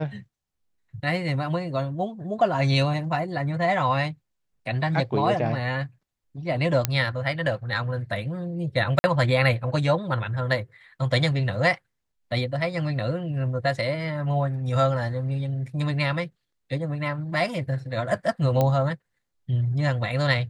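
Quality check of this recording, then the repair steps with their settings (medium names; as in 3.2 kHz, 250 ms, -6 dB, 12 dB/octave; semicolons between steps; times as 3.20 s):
6.85 s: pop -5 dBFS
8.99–9.04 s: dropout 50 ms
18.61 s: pop -10 dBFS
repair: de-click; interpolate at 8.99 s, 50 ms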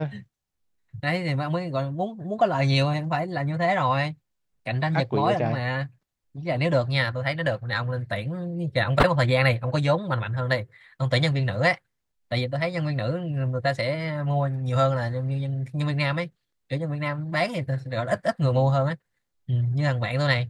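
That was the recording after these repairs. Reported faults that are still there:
nothing left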